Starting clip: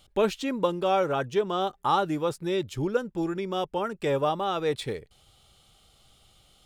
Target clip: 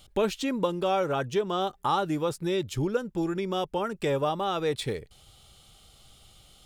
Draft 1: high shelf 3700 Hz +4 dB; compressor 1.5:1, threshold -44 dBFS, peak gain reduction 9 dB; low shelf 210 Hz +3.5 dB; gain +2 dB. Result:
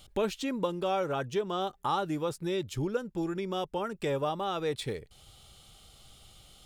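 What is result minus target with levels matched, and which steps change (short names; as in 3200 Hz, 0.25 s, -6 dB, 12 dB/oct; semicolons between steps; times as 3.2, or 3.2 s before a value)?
compressor: peak gain reduction +4 dB
change: compressor 1.5:1, threshold -32.5 dBFS, peak gain reduction 5.5 dB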